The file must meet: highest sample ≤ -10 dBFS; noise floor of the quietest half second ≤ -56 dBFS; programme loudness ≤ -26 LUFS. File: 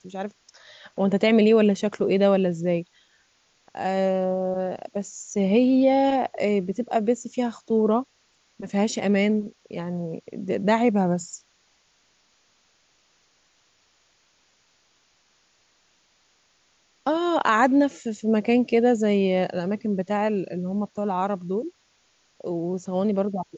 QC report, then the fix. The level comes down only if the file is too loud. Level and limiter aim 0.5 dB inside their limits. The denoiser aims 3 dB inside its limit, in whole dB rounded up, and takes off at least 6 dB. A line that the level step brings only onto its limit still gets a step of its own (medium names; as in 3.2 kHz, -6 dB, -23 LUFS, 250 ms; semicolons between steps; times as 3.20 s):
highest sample -7.0 dBFS: fail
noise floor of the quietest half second -65 dBFS: pass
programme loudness -23.5 LUFS: fail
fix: trim -3 dB; peak limiter -10.5 dBFS